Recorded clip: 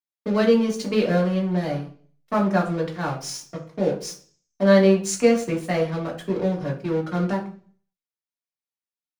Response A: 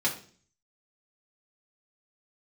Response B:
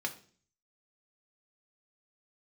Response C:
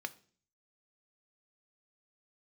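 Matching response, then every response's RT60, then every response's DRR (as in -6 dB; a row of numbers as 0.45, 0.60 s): A; 0.45, 0.45, 0.45 s; -2.5, 4.0, 11.0 dB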